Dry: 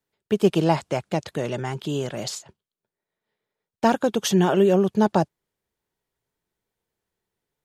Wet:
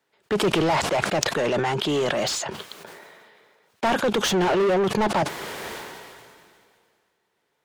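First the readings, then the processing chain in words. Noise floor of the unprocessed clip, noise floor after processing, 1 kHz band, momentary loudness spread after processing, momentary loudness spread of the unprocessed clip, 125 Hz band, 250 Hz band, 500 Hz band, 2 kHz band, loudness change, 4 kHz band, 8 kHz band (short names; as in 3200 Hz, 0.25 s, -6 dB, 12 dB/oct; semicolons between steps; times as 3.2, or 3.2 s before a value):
under -85 dBFS, -74 dBFS, +2.0 dB, 16 LU, 11 LU, -4.0 dB, -3.5 dB, 0.0 dB, +7.5 dB, -0.5 dB, +6.0 dB, +4.0 dB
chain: overdrive pedal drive 31 dB, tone 2300 Hz, clips at -4.5 dBFS; sustainer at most 27 dB/s; gain -9 dB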